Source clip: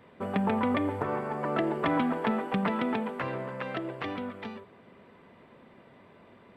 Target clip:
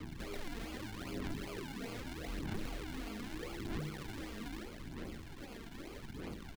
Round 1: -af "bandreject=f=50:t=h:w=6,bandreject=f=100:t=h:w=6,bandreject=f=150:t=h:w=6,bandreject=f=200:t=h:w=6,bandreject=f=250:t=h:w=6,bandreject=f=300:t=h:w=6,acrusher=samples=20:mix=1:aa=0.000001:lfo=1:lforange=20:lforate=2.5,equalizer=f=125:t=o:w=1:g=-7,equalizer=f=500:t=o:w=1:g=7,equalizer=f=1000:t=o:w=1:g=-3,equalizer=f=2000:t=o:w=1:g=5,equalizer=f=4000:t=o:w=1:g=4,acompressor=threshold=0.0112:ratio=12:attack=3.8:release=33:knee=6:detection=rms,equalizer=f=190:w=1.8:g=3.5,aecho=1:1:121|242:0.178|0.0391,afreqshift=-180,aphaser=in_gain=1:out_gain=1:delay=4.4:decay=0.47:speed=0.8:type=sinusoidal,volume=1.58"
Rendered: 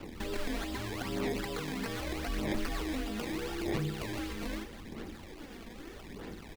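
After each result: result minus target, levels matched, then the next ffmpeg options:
compression: peak gain reduction -6 dB; decimation with a swept rate: distortion -8 dB
-af "bandreject=f=50:t=h:w=6,bandreject=f=100:t=h:w=6,bandreject=f=150:t=h:w=6,bandreject=f=200:t=h:w=6,bandreject=f=250:t=h:w=6,bandreject=f=300:t=h:w=6,acrusher=samples=20:mix=1:aa=0.000001:lfo=1:lforange=20:lforate=2.5,equalizer=f=125:t=o:w=1:g=-7,equalizer=f=500:t=o:w=1:g=7,equalizer=f=1000:t=o:w=1:g=-3,equalizer=f=2000:t=o:w=1:g=5,equalizer=f=4000:t=o:w=1:g=4,acompressor=threshold=0.00473:ratio=12:attack=3.8:release=33:knee=6:detection=rms,equalizer=f=190:w=1.8:g=3.5,aecho=1:1:121|242:0.178|0.0391,afreqshift=-180,aphaser=in_gain=1:out_gain=1:delay=4.4:decay=0.47:speed=0.8:type=sinusoidal,volume=1.58"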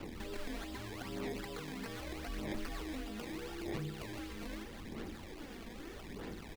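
decimation with a swept rate: distortion -8 dB
-af "bandreject=f=50:t=h:w=6,bandreject=f=100:t=h:w=6,bandreject=f=150:t=h:w=6,bandreject=f=200:t=h:w=6,bandreject=f=250:t=h:w=6,bandreject=f=300:t=h:w=6,acrusher=samples=44:mix=1:aa=0.000001:lfo=1:lforange=44:lforate=2.5,equalizer=f=125:t=o:w=1:g=-7,equalizer=f=500:t=o:w=1:g=7,equalizer=f=1000:t=o:w=1:g=-3,equalizer=f=2000:t=o:w=1:g=5,equalizer=f=4000:t=o:w=1:g=4,acompressor=threshold=0.00473:ratio=12:attack=3.8:release=33:knee=6:detection=rms,equalizer=f=190:w=1.8:g=3.5,aecho=1:1:121|242:0.178|0.0391,afreqshift=-180,aphaser=in_gain=1:out_gain=1:delay=4.4:decay=0.47:speed=0.8:type=sinusoidal,volume=1.58"

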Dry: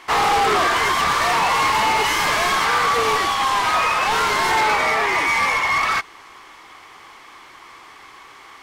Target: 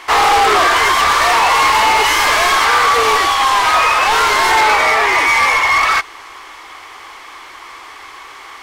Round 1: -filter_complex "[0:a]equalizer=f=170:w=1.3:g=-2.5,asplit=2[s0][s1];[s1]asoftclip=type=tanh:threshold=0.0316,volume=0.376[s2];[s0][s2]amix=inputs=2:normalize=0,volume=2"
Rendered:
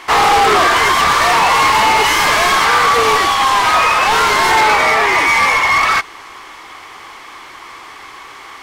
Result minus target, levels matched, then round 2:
125 Hz band +4.5 dB
-filter_complex "[0:a]equalizer=f=170:w=1.3:g=-13.5,asplit=2[s0][s1];[s1]asoftclip=type=tanh:threshold=0.0316,volume=0.376[s2];[s0][s2]amix=inputs=2:normalize=0,volume=2"

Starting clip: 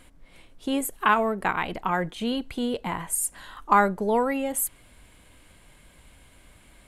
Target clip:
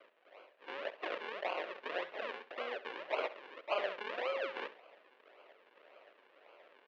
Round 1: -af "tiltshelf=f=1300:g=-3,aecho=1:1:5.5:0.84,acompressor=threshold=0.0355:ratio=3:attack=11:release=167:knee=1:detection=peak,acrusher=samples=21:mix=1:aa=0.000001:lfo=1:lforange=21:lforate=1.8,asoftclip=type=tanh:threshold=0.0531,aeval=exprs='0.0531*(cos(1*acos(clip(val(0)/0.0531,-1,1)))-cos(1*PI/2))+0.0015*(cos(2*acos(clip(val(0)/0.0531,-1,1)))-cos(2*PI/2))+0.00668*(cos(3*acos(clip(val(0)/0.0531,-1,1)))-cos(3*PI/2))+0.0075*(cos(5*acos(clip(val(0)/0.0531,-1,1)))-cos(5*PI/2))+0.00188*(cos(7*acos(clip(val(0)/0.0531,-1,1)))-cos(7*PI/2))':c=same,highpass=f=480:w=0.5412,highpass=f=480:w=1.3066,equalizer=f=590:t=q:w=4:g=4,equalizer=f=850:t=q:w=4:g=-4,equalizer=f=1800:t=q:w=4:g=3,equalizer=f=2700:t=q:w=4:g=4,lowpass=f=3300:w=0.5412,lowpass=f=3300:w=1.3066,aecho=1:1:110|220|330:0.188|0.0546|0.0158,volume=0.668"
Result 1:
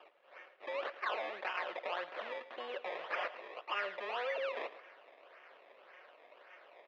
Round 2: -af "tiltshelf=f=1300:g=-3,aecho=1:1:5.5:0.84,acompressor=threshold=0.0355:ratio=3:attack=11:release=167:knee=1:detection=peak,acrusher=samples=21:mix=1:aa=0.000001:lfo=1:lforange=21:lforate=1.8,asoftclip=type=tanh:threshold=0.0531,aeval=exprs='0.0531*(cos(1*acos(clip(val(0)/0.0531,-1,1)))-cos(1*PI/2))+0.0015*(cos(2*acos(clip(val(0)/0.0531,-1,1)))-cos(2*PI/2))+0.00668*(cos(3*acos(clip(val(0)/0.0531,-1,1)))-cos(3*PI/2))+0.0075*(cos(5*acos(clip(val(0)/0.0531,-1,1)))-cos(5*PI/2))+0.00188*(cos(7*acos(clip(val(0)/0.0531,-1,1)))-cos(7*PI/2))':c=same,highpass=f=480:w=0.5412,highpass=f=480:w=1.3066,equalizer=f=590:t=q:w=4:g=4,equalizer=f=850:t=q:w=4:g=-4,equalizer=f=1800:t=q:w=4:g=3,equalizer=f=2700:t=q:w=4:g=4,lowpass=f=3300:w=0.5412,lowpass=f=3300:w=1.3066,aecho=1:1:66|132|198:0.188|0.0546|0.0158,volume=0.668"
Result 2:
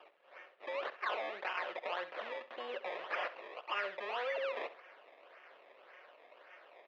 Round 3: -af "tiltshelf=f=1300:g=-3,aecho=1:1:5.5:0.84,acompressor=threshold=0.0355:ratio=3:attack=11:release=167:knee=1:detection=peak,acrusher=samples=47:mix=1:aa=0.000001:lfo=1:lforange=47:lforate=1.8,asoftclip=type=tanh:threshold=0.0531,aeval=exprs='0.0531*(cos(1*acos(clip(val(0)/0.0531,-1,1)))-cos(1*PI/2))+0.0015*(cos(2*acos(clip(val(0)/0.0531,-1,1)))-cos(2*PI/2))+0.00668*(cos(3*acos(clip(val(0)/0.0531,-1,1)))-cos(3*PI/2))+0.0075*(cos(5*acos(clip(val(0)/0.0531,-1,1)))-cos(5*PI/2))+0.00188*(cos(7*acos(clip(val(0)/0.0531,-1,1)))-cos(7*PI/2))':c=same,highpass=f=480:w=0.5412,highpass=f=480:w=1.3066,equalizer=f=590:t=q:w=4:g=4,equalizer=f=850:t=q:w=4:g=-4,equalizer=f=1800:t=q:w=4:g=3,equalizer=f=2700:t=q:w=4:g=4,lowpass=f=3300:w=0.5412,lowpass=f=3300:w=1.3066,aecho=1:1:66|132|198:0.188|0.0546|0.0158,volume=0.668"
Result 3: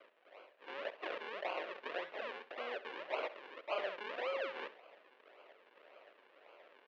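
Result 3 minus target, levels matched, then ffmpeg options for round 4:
saturation: distortion +7 dB
-af "tiltshelf=f=1300:g=-3,aecho=1:1:5.5:0.84,acompressor=threshold=0.0355:ratio=3:attack=11:release=167:knee=1:detection=peak,acrusher=samples=47:mix=1:aa=0.000001:lfo=1:lforange=47:lforate=1.8,asoftclip=type=tanh:threshold=0.119,aeval=exprs='0.0531*(cos(1*acos(clip(val(0)/0.0531,-1,1)))-cos(1*PI/2))+0.0015*(cos(2*acos(clip(val(0)/0.0531,-1,1)))-cos(2*PI/2))+0.00668*(cos(3*acos(clip(val(0)/0.0531,-1,1)))-cos(3*PI/2))+0.0075*(cos(5*acos(clip(val(0)/0.0531,-1,1)))-cos(5*PI/2))+0.00188*(cos(7*acos(clip(val(0)/0.0531,-1,1)))-cos(7*PI/2))':c=same,highpass=f=480:w=0.5412,highpass=f=480:w=1.3066,equalizer=f=590:t=q:w=4:g=4,equalizer=f=850:t=q:w=4:g=-4,equalizer=f=1800:t=q:w=4:g=3,equalizer=f=2700:t=q:w=4:g=4,lowpass=f=3300:w=0.5412,lowpass=f=3300:w=1.3066,aecho=1:1:66|132|198:0.188|0.0546|0.0158,volume=0.668"

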